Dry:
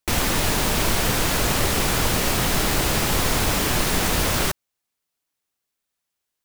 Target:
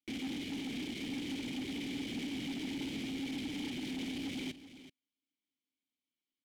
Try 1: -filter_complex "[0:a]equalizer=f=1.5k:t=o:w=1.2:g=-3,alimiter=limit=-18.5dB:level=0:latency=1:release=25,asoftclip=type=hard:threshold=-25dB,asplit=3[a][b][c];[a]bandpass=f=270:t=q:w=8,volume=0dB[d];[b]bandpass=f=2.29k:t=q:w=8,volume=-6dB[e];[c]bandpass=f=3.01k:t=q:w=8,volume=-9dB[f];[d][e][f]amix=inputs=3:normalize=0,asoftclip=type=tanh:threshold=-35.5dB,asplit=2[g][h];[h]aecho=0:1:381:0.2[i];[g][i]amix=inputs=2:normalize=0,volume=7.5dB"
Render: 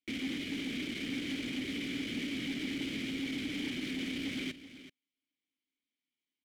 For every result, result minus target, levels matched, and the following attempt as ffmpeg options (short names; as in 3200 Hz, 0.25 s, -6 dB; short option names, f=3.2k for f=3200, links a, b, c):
soft clip: distortion -8 dB; 2000 Hz band +3.5 dB
-filter_complex "[0:a]equalizer=f=1.5k:t=o:w=1.2:g=-3,alimiter=limit=-18.5dB:level=0:latency=1:release=25,asoftclip=type=hard:threshold=-25dB,asplit=3[a][b][c];[a]bandpass=f=270:t=q:w=8,volume=0dB[d];[b]bandpass=f=2.29k:t=q:w=8,volume=-6dB[e];[c]bandpass=f=3.01k:t=q:w=8,volume=-9dB[f];[d][e][f]amix=inputs=3:normalize=0,asoftclip=type=tanh:threshold=-42dB,asplit=2[g][h];[h]aecho=0:1:381:0.2[i];[g][i]amix=inputs=2:normalize=0,volume=7.5dB"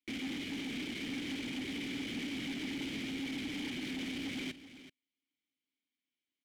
2000 Hz band +3.5 dB
-filter_complex "[0:a]equalizer=f=1.5k:t=o:w=1.2:g=-13,alimiter=limit=-18.5dB:level=0:latency=1:release=25,asoftclip=type=hard:threshold=-25dB,asplit=3[a][b][c];[a]bandpass=f=270:t=q:w=8,volume=0dB[d];[b]bandpass=f=2.29k:t=q:w=8,volume=-6dB[e];[c]bandpass=f=3.01k:t=q:w=8,volume=-9dB[f];[d][e][f]amix=inputs=3:normalize=0,asoftclip=type=tanh:threshold=-42dB,asplit=2[g][h];[h]aecho=0:1:381:0.2[i];[g][i]amix=inputs=2:normalize=0,volume=7.5dB"